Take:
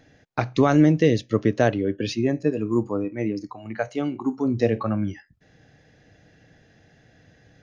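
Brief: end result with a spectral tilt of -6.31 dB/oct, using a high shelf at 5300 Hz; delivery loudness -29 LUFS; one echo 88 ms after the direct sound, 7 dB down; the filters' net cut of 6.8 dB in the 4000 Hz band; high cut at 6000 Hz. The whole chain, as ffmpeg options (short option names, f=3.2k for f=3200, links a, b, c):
-af "lowpass=6k,equalizer=f=4k:t=o:g=-5,highshelf=f=5.3k:g=-7,aecho=1:1:88:0.447,volume=-6.5dB"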